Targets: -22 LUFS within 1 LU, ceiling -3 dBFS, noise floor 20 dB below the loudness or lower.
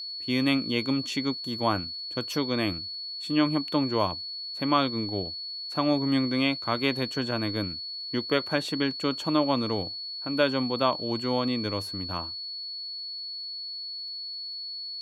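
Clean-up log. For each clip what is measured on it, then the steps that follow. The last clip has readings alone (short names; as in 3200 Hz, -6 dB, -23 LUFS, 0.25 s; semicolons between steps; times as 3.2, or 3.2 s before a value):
ticks 27/s; steady tone 4400 Hz; tone level -34 dBFS; loudness -28.0 LUFS; peak -8.5 dBFS; loudness target -22.0 LUFS
-> de-click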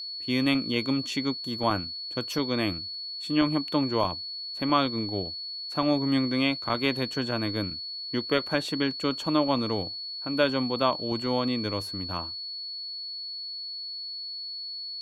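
ticks 0/s; steady tone 4400 Hz; tone level -34 dBFS
-> notch 4400 Hz, Q 30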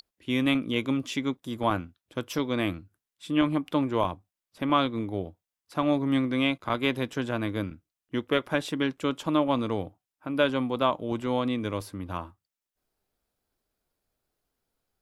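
steady tone none; loudness -28.5 LUFS; peak -8.5 dBFS; loudness target -22.0 LUFS
-> gain +6.5 dB; limiter -3 dBFS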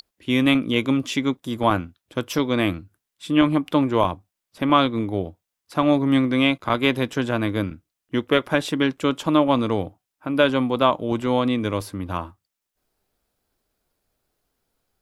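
loudness -22.0 LUFS; peak -3.0 dBFS; noise floor -84 dBFS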